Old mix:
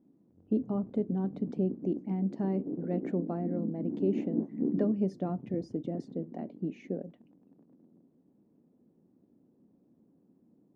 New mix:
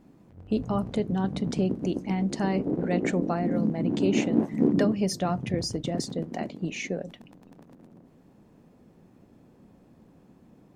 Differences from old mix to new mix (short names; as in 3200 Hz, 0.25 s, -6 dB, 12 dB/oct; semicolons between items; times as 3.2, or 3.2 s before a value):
background +7.0 dB; master: remove band-pass 280 Hz, Q 1.4